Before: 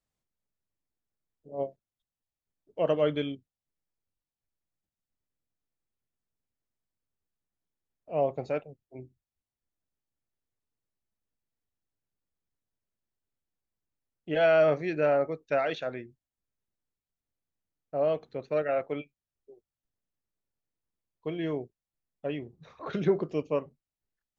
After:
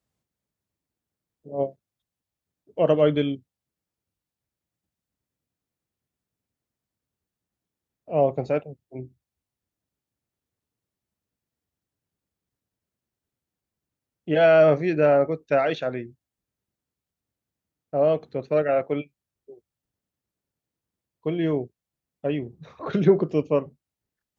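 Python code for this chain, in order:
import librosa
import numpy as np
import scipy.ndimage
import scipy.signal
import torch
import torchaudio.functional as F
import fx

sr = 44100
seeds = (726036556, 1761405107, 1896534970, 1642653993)

y = scipy.signal.sosfilt(scipy.signal.butter(2, 67.0, 'highpass', fs=sr, output='sos'), x)
y = fx.low_shelf(y, sr, hz=470.0, db=6.0)
y = F.gain(torch.from_numpy(y), 4.0).numpy()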